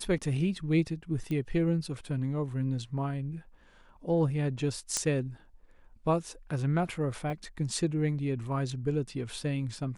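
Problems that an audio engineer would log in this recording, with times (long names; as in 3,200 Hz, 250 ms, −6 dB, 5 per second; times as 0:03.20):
0:01.31: click −24 dBFS
0:04.97: click −14 dBFS
0:07.30: drop-out 2 ms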